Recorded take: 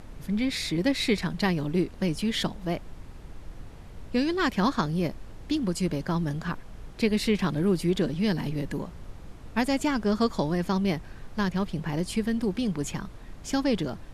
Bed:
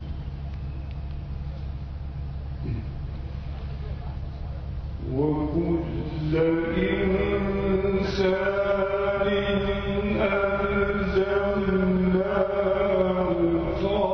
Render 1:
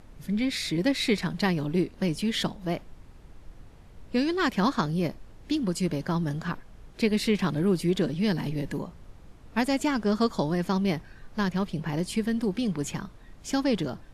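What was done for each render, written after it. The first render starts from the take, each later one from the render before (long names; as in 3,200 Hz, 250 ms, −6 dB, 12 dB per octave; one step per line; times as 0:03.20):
noise reduction from a noise print 6 dB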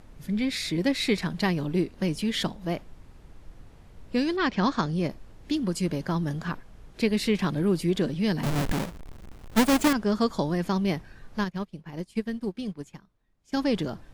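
0:04.36–0:05.08: low-pass filter 4,600 Hz → 11,000 Hz 24 dB per octave
0:08.43–0:09.93: each half-wave held at its own peak
0:11.44–0:13.57: expander for the loud parts 2.5 to 1, over −38 dBFS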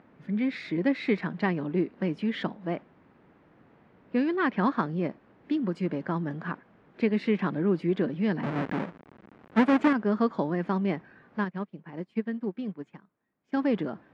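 Chebyshev band-pass filter 210–1,900 Hz, order 2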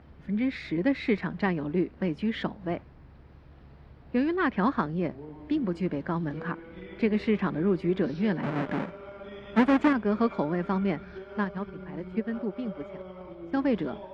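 mix in bed −19.5 dB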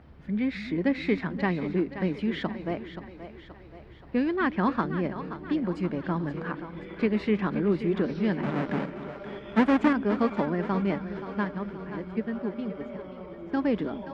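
echo with a time of its own for lows and highs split 300 Hz, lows 261 ms, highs 527 ms, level −11 dB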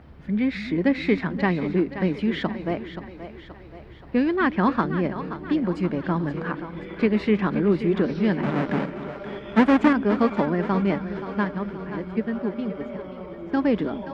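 level +4.5 dB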